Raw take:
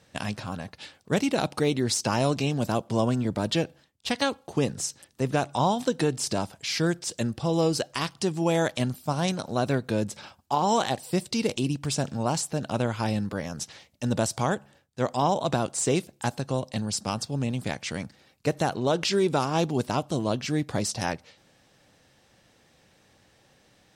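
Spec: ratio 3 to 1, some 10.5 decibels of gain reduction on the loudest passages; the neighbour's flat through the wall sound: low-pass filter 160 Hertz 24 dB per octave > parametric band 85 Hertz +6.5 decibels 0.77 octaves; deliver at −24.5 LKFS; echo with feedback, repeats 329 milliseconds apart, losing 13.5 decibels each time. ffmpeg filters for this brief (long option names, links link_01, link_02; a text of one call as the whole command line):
ffmpeg -i in.wav -af "acompressor=threshold=-34dB:ratio=3,lowpass=frequency=160:width=0.5412,lowpass=frequency=160:width=1.3066,equalizer=frequency=85:width_type=o:width=0.77:gain=6.5,aecho=1:1:329|658:0.211|0.0444,volume=18dB" out.wav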